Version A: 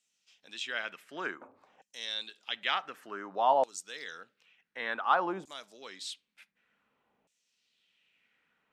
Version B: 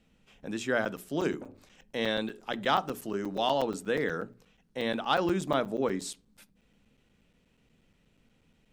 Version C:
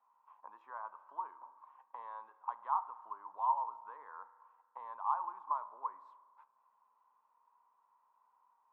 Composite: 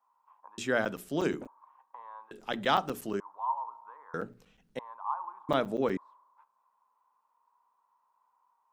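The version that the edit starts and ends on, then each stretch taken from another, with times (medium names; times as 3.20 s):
C
0.58–1.47 s: from B
2.31–3.20 s: from B
4.14–4.79 s: from B
5.49–5.97 s: from B
not used: A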